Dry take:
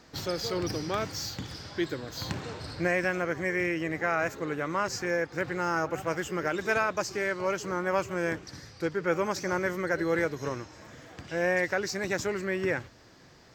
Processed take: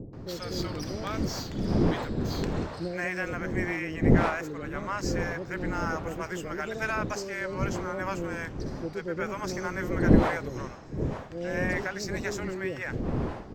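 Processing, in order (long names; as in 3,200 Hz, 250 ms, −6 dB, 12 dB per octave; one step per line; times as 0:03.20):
wind on the microphone 370 Hz −28 dBFS
multiband delay without the direct sound lows, highs 130 ms, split 580 Hz
one half of a high-frequency compander decoder only
level −2.5 dB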